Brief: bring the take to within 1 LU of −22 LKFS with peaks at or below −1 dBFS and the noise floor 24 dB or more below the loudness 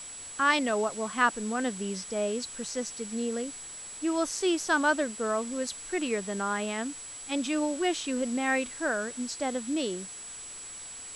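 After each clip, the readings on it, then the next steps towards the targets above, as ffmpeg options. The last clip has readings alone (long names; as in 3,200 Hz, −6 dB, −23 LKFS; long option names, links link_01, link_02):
interfering tone 7,800 Hz; level of the tone −41 dBFS; background noise floor −43 dBFS; target noise floor −54 dBFS; integrated loudness −30.0 LKFS; sample peak −12.0 dBFS; target loudness −22.0 LKFS
→ -af "bandreject=frequency=7800:width=30"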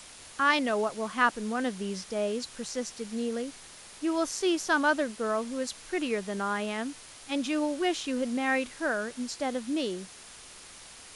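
interfering tone none found; background noise floor −49 dBFS; target noise floor −54 dBFS
→ -af "afftdn=noise_reduction=6:noise_floor=-49"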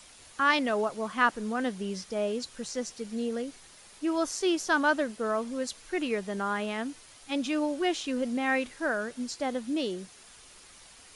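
background noise floor −53 dBFS; target noise floor −54 dBFS
→ -af "afftdn=noise_reduction=6:noise_floor=-53"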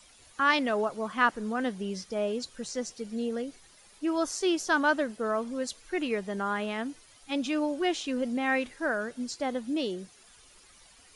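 background noise floor −57 dBFS; integrated loudness −30.0 LKFS; sample peak −12.0 dBFS; target loudness −22.0 LKFS
→ -af "volume=8dB"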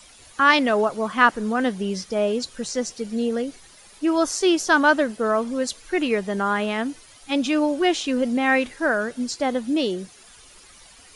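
integrated loudness −22.0 LKFS; sample peak −4.0 dBFS; background noise floor −49 dBFS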